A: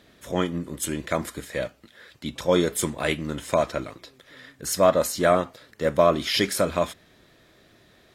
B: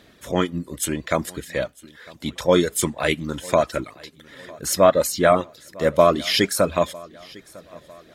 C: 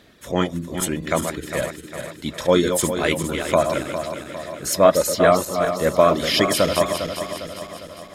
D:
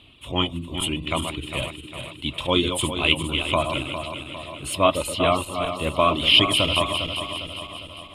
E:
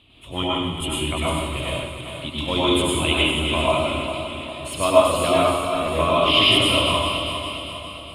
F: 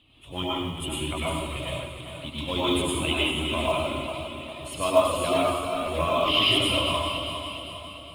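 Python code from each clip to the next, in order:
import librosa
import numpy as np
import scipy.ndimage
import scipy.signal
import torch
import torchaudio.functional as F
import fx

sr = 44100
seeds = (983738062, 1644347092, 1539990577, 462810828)

y1 = fx.dereverb_blind(x, sr, rt60_s=0.7)
y1 = fx.echo_feedback(y1, sr, ms=952, feedback_pct=45, wet_db=-23)
y1 = F.gain(torch.from_numpy(y1), 4.0).numpy()
y2 = fx.reverse_delay_fb(y1, sr, ms=202, feedback_pct=71, wet_db=-7.0)
y3 = fx.curve_eq(y2, sr, hz=(120.0, 190.0, 290.0, 490.0, 1100.0, 1700.0, 2800.0, 6000.0, 9300.0, 14000.0), db=(0, -13, -5, -15, -3, -22, 10, -25, -6, -22))
y3 = F.gain(torch.from_numpy(y3), 4.5).numpy()
y4 = fx.rev_plate(y3, sr, seeds[0], rt60_s=1.1, hf_ratio=0.75, predelay_ms=85, drr_db=-6.5)
y4 = F.gain(torch.from_numpy(y4), -4.5).numpy()
y5 = fx.spec_quant(y4, sr, step_db=15)
y5 = fx.quant_float(y5, sr, bits=4)
y5 = F.gain(torch.from_numpy(y5), -5.0).numpy()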